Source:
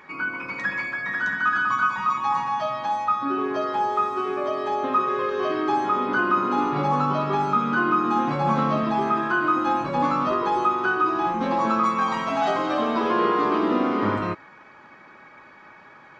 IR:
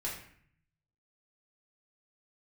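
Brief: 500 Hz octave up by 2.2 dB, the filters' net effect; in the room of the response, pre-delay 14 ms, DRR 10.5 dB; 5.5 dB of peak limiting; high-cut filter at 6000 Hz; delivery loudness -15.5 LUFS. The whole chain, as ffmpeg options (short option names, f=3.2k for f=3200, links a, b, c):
-filter_complex "[0:a]lowpass=6k,equalizer=f=500:t=o:g=3,alimiter=limit=-14dB:level=0:latency=1,asplit=2[a][b];[1:a]atrim=start_sample=2205,adelay=14[c];[b][c]afir=irnorm=-1:irlink=0,volume=-13dB[d];[a][d]amix=inputs=2:normalize=0,volume=8.5dB"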